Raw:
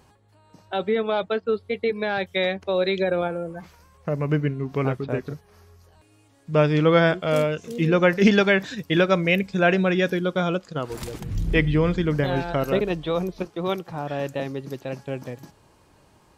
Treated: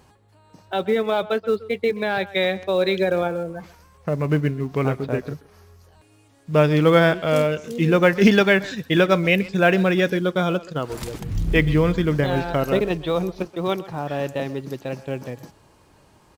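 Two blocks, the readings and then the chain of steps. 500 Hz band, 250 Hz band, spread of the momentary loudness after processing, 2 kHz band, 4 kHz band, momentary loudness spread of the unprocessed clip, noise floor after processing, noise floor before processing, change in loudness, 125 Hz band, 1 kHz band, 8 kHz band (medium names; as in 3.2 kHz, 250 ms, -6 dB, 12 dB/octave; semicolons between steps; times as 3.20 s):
+2.0 dB, +2.0 dB, 14 LU, +2.0 dB, +2.0 dB, 14 LU, -56 dBFS, -58 dBFS, +2.0 dB, +2.0 dB, +2.0 dB, no reading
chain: in parallel at -11 dB: short-mantissa float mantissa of 2-bit; on the sum: speakerphone echo 130 ms, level -17 dB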